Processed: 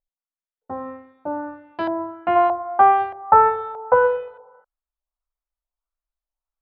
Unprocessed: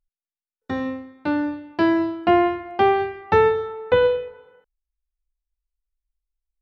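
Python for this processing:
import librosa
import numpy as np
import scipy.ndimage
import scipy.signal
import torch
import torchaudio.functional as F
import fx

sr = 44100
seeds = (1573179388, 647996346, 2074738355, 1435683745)

y = fx.band_shelf(x, sr, hz=870.0, db=fx.steps((0.0, 8.0), (2.35, 15.5)), octaves=1.7)
y = fx.filter_lfo_lowpass(y, sr, shape='saw_up', hz=1.6, low_hz=680.0, high_hz=4300.0, q=1.7)
y = y * 10.0 ** (-10.0 / 20.0)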